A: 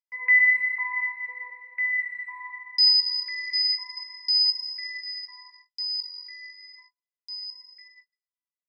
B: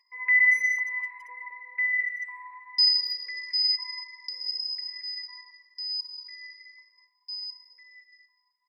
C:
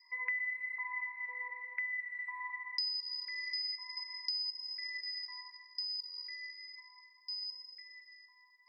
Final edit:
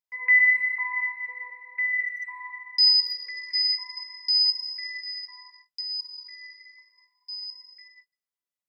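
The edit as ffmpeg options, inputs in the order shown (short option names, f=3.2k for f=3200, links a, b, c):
-filter_complex "[1:a]asplit=3[a][b][c];[0:a]asplit=4[d][e][f][g];[d]atrim=end=1.632[h];[a]atrim=start=1.628:end=2.252[i];[e]atrim=start=2.248:end=3.062[j];[b]atrim=start=3.058:end=3.552[k];[f]atrim=start=3.548:end=5.812[l];[c]atrim=start=5.808:end=7.472[m];[g]atrim=start=7.468[n];[h][i]acrossfade=d=0.004:c1=hsin:c2=hsin[o];[o][j]acrossfade=d=0.004:c1=hsin:c2=hsin[p];[p][k]acrossfade=d=0.004:c1=hsin:c2=hsin[q];[q][l]acrossfade=d=0.004:c1=hsin:c2=hsin[r];[r][m]acrossfade=d=0.004:c1=hsin:c2=hsin[s];[s][n]acrossfade=d=0.004:c1=hsin:c2=hsin"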